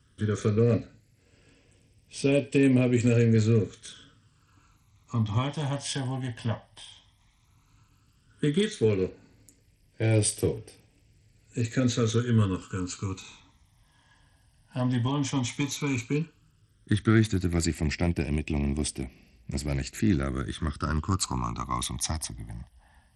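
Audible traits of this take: phasing stages 12, 0.12 Hz, lowest notch 410–1300 Hz; SBC

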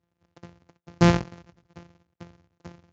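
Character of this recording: a buzz of ramps at a fixed pitch in blocks of 256 samples; Speex

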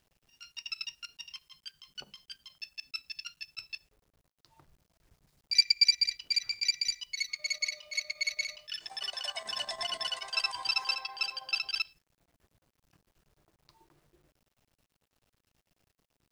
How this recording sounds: chopped level 9.2 Hz, depth 60%, duty 75%; a quantiser's noise floor 12-bit, dither none

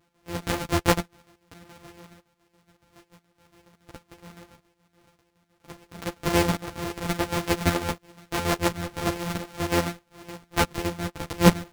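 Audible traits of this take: a buzz of ramps at a fixed pitch in blocks of 256 samples; chopped level 7.1 Hz, depth 60%, duty 55%; a shimmering, thickened sound

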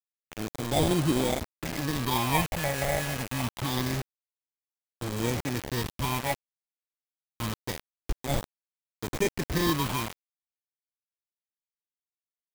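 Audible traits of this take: aliases and images of a low sample rate 1.4 kHz, jitter 0%; phasing stages 6, 0.26 Hz, lowest notch 290–1700 Hz; a quantiser's noise floor 6-bit, dither none

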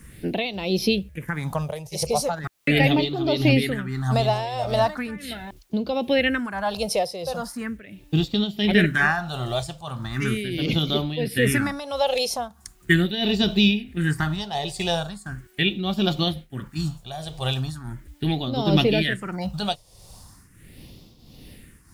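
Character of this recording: phasing stages 4, 0.39 Hz, lowest notch 260–1700 Hz; a quantiser's noise floor 12-bit, dither triangular; tremolo triangle 1.5 Hz, depth 75%

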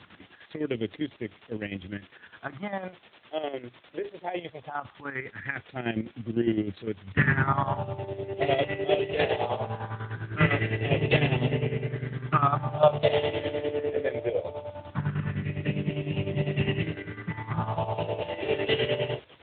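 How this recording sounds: phasing stages 4, 0.2 Hz, lowest notch 180–1300 Hz; a quantiser's noise floor 8-bit, dither triangular; chopped level 9.9 Hz, depth 65%, duty 50%; AMR-NB

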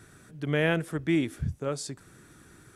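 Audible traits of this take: noise floor -56 dBFS; spectral tilt -5.5 dB/octave

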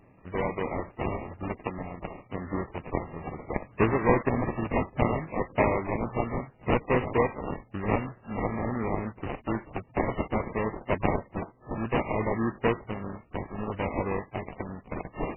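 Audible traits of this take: a buzz of ramps at a fixed pitch in blocks of 16 samples; phasing stages 2, 0.58 Hz, lowest notch 490–1300 Hz; aliases and images of a low sample rate 1.5 kHz, jitter 20%; MP3

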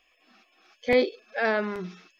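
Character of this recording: noise floor -67 dBFS; spectral tilt -2.5 dB/octave

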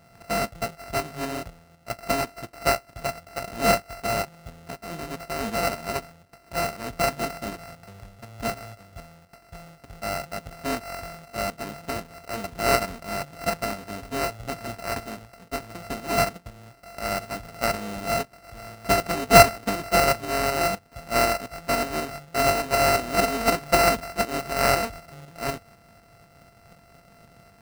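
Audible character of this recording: a buzz of ramps at a fixed pitch in blocks of 64 samples; tremolo saw up 4 Hz, depth 45%; aliases and images of a low sample rate 3.4 kHz, jitter 0%

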